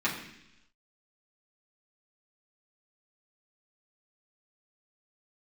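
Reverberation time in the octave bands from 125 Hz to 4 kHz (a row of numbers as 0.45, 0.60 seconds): 0.95, 0.95, 0.85, 0.85, 1.0, 1.1 seconds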